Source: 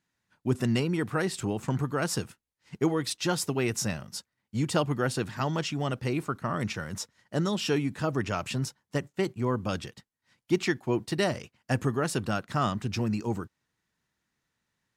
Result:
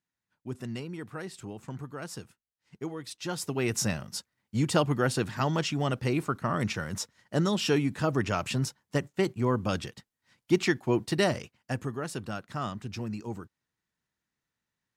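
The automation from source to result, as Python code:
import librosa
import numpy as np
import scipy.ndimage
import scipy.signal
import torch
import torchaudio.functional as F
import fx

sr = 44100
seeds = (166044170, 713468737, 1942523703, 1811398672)

y = fx.gain(x, sr, db=fx.line((3.04, -10.5), (3.78, 1.5), (11.39, 1.5), (11.82, -6.5)))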